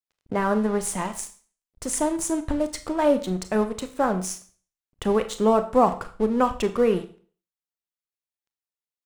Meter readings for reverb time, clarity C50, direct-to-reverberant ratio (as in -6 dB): 0.40 s, 13.5 dB, 9.0 dB